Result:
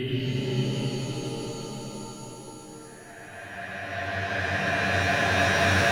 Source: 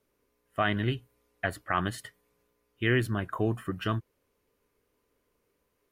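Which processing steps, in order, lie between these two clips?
Paulstretch 14×, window 0.50 s, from 1.02; echo with dull and thin repeats by turns 0.249 s, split 1000 Hz, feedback 67%, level -5.5 dB; shimmer reverb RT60 3.9 s, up +7 st, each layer -2 dB, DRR 1.5 dB; gain +7.5 dB

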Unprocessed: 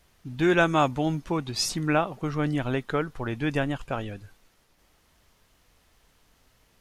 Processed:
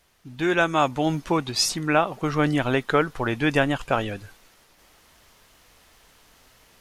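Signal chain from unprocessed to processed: low shelf 280 Hz -7.5 dB; vocal rider within 4 dB 0.5 s; gain +5.5 dB

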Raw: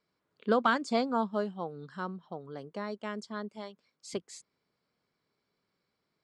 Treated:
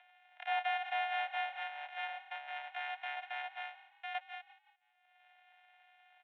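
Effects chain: sample sorter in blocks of 128 samples; gate with hold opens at -59 dBFS; upward compressor, threshold -33 dBFS; soft clip -27.5 dBFS, distortion -8 dB; fixed phaser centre 1800 Hz, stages 4; mistuned SSB +390 Hz 350–3600 Hz; frequency-shifting echo 0.173 s, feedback 39%, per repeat +36 Hz, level -17 dB; gain +4 dB

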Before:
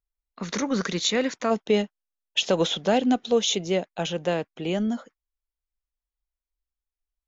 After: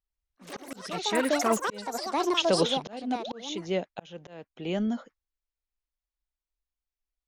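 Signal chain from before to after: LPF 6000 Hz 12 dB/oct; echoes that change speed 0.104 s, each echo +6 st, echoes 3; painted sound rise, 3.19–3.41, 300–2300 Hz -33 dBFS; auto swell 0.524 s; gain -2.5 dB

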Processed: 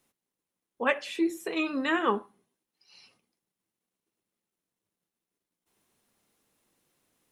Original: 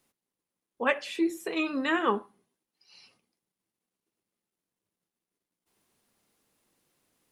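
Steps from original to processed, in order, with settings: notch 4700 Hz, Q 19

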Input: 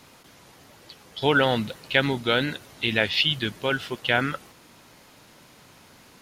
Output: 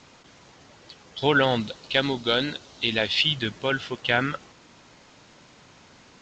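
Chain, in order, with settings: 1.6–3.15 graphic EQ 125/2000/4000 Hz -5/-5/+5 dB; G.722 64 kbps 16000 Hz

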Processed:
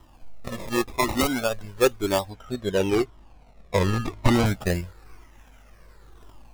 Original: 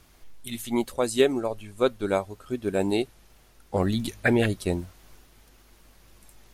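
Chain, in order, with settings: decimation with a swept rate 20×, swing 100% 0.32 Hz; 2.3–4.46 high shelf 7900 Hz -11.5 dB; cascading flanger falling 0.95 Hz; gain +7 dB

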